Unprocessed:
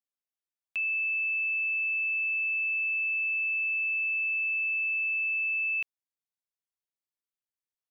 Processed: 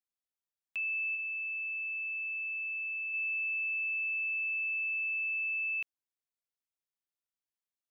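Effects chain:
0:01.13–0:03.14: flutter between parallel walls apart 3.3 metres, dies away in 0.23 s
level −4.5 dB

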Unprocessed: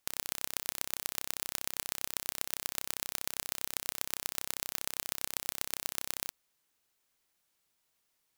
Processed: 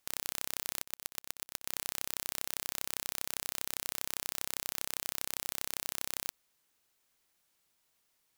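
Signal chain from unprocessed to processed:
0:00.83–0:01.68: volume swells 352 ms
leveller curve on the samples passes 1
brickwall limiter −12 dBFS, peak gain reduction 8 dB
level +4 dB

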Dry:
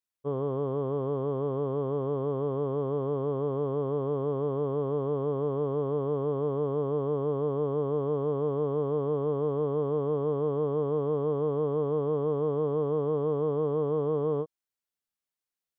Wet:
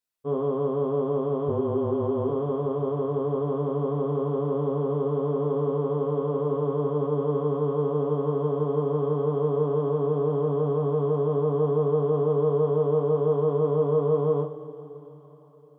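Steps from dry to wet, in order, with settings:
0:01.48–0:02.29: frequency shifter −29 Hz
coupled-rooms reverb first 0.31 s, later 4.7 s, from −21 dB, DRR −1 dB

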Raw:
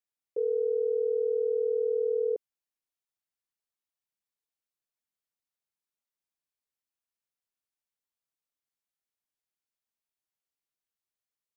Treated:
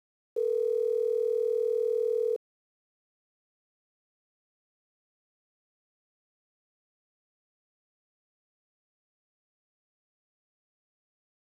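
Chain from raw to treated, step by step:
centre clipping without the shift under −47.5 dBFS

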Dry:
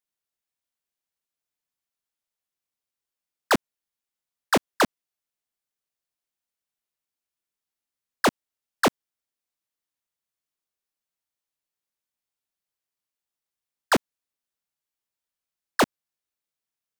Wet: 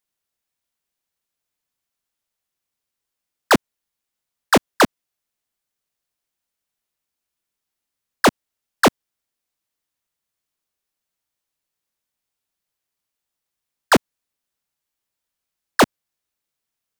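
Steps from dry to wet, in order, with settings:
low-shelf EQ 160 Hz +3 dB
level +6 dB

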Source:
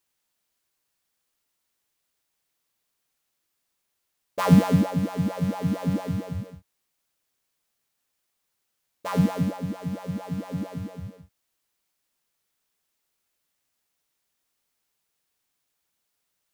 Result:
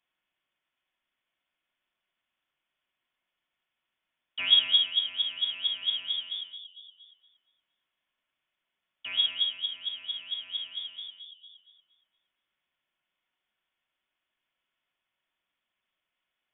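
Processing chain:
notch comb filter 380 Hz
bucket-brigade delay 233 ms, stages 1,024, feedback 31%, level −9.5 dB
on a send at −21 dB: convolution reverb RT60 0.40 s, pre-delay 3 ms
on the sum: voice inversion scrambler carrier 3,500 Hz
one half of a high-frequency compander encoder only
level −6 dB

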